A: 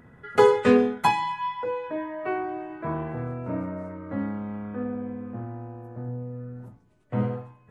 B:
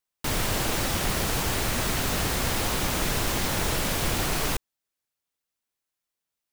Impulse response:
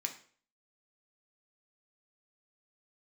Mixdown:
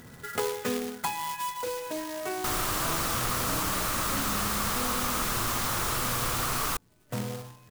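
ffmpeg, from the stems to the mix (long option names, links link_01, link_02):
-filter_complex "[0:a]acompressor=threshold=-30dB:ratio=2,acrusher=bits=2:mode=log:mix=0:aa=0.000001,volume=2.5dB[link_01];[1:a]equalizer=frequency=1200:width=2.3:gain=13,adelay=2200,volume=-0.5dB[link_02];[link_01][link_02]amix=inputs=2:normalize=0,highshelf=frequency=4400:gain=8.5,acompressor=threshold=-39dB:ratio=1.5"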